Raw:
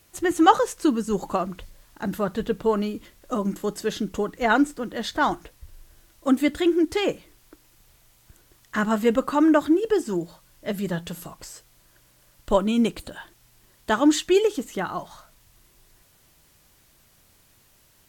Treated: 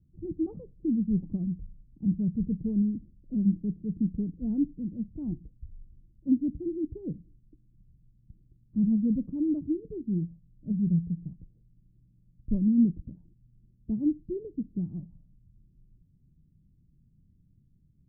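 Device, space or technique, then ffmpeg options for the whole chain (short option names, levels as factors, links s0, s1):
the neighbour's flat through the wall: -af "lowpass=f=230:w=0.5412,lowpass=f=230:w=1.3066,equalizer=f=160:t=o:w=0.77:g=5,volume=1.12"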